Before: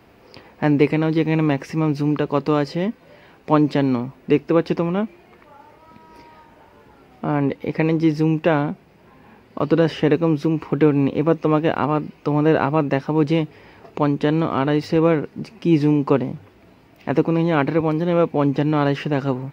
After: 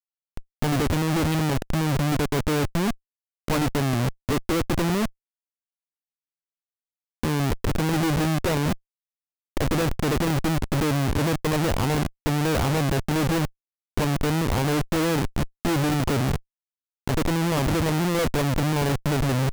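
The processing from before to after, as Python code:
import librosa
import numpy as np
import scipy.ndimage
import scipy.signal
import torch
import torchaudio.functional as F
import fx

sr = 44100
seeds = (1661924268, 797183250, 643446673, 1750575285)

y = fx.wiener(x, sr, points=41)
y = fx.low_shelf_res(y, sr, hz=120.0, db=10.5, q=1.5)
y = fx.schmitt(y, sr, flips_db=-29.5)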